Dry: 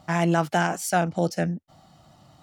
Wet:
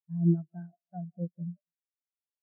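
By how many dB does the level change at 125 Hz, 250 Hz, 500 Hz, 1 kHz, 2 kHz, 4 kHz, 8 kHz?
-4.0 dB, -5.0 dB, -17.5 dB, -28.0 dB, under -40 dB, under -40 dB, under -40 dB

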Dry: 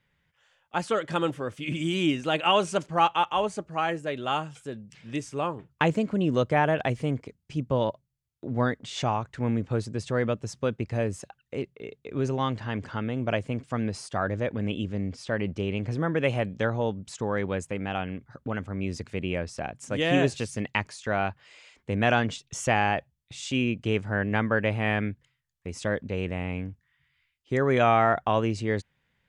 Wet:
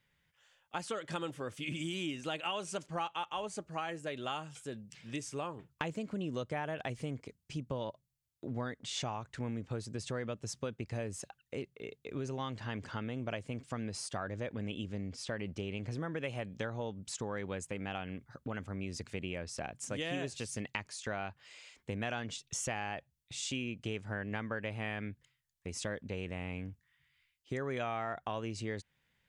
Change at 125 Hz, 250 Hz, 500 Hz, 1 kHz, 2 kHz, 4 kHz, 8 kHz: -11.5 dB, -11.5 dB, -12.5 dB, -13.5 dB, -11.5 dB, -8.5 dB, -1.5 dB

